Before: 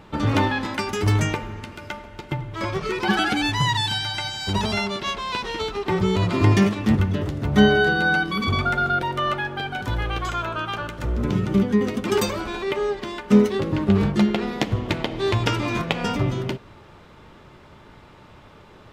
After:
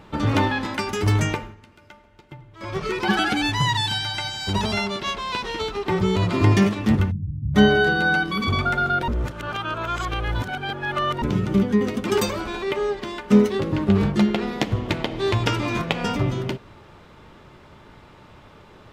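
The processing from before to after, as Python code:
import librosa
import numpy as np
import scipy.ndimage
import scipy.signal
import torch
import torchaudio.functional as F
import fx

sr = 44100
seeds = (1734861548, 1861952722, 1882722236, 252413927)

y = fx.cheby2_lowpass(x, sr, hz=590.0, order=4, stop_db=60, at=(7.1, 7.54), fade=0.02)
y = fx.edit(y, sr, fx.fade_down_up(start_s=1.36, length_s=1.43, db=-14.0, fade_s=0.2),
    fx.reverse_span(start_s=9.08, length_s=2.14), tone=tone)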